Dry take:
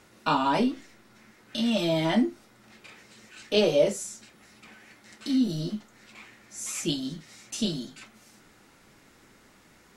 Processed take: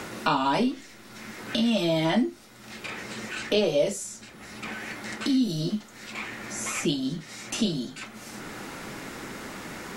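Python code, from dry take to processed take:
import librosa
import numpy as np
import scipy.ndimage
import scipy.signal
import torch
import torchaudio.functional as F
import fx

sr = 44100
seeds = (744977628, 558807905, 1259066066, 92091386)

y = fx.band_squash(x, sr, depth_pct=70)
y = y * 10.0 ** (2.0 / 20.0)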